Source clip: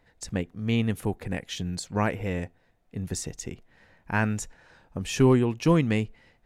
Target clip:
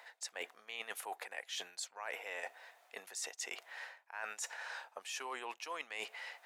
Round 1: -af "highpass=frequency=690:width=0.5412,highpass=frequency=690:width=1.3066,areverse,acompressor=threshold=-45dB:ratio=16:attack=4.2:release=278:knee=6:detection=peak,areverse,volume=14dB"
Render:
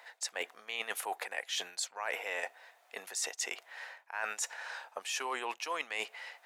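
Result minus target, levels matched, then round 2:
downward compressor: peak gain reduction −6.5 dB
-af "highpass=frequency=690:width=0.5412,highpass=frequency=690:width=1.3066,areverse,acompressor=threshold=-52dB:ratio=16:attack=4.2:release=278:knee=6:detection=peak,areverse,volume=14dB"

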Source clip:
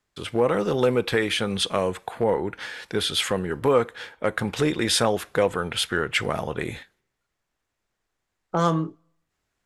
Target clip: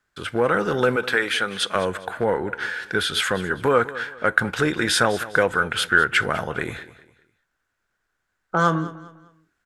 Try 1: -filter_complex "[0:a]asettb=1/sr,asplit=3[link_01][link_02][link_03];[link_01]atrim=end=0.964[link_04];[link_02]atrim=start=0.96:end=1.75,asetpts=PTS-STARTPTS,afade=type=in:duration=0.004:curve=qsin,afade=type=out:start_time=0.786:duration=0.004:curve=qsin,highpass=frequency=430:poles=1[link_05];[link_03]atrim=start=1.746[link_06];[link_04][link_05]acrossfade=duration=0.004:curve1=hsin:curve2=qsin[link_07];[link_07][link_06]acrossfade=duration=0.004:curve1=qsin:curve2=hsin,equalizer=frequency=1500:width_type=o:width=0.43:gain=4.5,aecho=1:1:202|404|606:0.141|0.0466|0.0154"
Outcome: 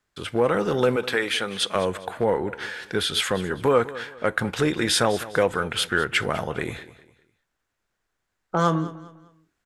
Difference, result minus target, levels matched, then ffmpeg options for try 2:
2,000 Hz band −4.5 dB
-filter_complex "[0:a]asettb=1/sr,asplit=3[link_01][link_02][link_03];[link_01]atrim=end=0.964[link_04];[link_02]atrim=start=0.96:end=1.75,asetpts=PTS-STARTPTS,afade=type=in:duration=0.004:curve=qsin,afade=type=out:start_time=0.786:duration=0.004:curve=qsin,highpass=frequency=430:poles=1[link_05];[link_03]atrim=start=1.746[link_06];[link_04][link_05]acrossfade=duration=0.004:curve1=hsin:curve2=qsin[link_07];[link_07][link_06]acrossfade=duration=0.004:curve1=qsin:curve2=hsin,equalizer=frequency=1500:width_type=o:width=0.43:gain=13.5,aecho=1:1:202|404|606:0.141|0.0466|0.0154"

